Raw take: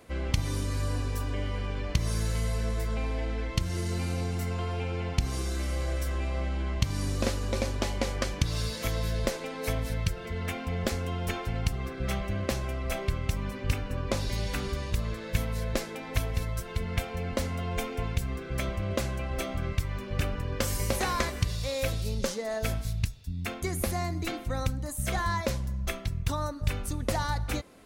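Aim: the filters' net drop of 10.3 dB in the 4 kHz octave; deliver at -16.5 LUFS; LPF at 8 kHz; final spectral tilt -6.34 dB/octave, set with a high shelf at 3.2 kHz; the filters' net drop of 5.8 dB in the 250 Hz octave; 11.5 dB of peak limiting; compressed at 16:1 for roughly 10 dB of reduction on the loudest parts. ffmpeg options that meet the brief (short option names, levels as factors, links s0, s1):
-af "lowpass=8000,equalizer=f=250:t=o:g=-8.5,highshelf=f=3200:g=-6.5,equalizer=f=4000:t=o:g=-8.5,acompressor=threshold=0.0251:ratio=16,volume=17.8,alimiter=limit=0.447:level=0:latency=1"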